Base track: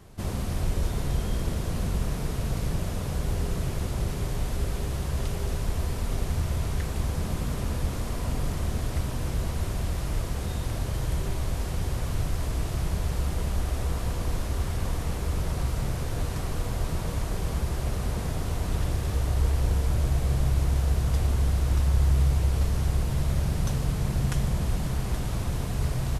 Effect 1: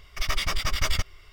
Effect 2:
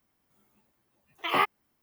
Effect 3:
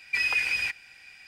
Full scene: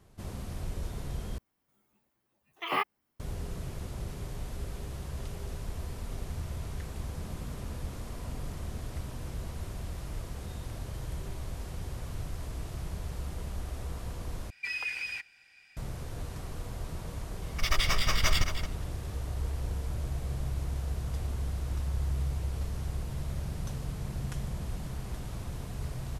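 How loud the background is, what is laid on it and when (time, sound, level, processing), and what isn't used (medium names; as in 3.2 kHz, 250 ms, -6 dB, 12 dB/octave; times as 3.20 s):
base track -9.5 dB
1.38 s: replace with 2 -5 dB
14.50 s: replace with 3 -9 dB
17.42 s: add 1 -1 dB + echo from a far wall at 38 m, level -8 dB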